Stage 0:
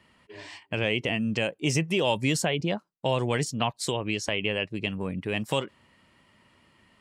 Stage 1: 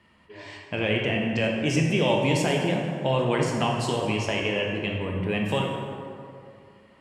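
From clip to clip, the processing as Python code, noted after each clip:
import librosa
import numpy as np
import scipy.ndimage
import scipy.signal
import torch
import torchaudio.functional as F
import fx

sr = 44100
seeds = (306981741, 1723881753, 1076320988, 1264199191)

y = fx.high_shelf(x, sr, hz=4800.0, db=-7.5)
y = fx.rev_plate(y, sr, seeds[0], rt60_s=2.5, hf_ratio=0.5, predelay_ms=0, drr_db=-1.0)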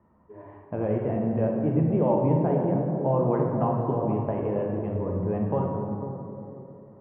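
y = scipy.signal.sosfilt(scipy.signal.butter(4, 1100.0, 'lowpass', fs=sr, output='sos'), x)
y = fx.echo_wet_lowpass(y, sr, ms=498, feedback_pct=31, hz=560.0, wet_db=-7)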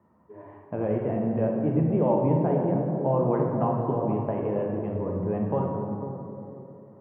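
y = scipy.signal.sosfilt(scipy.signal.butter(2, 95.0, 'highpass', fs=sr, output='sos'), x)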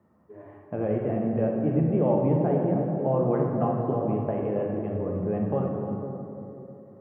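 y = fx.notch(x, sr, hz=960.0, q=6.2)
y = y + 10.0 ** (-12.5 / 20.0) * np.pad(y, (int(312 * sr / 1000.0), 0))[:len(y)]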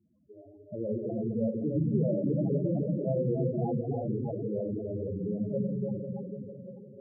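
y = fx.echo_split(x, sr, split_hz=360.0, low_ms=175, high_ms=296, feedback_pct=52, wet_db=-5)
y = fx.spec_topn(y, sr, count=8)
y = y * 10.0 ** (-4.5 / 20.0)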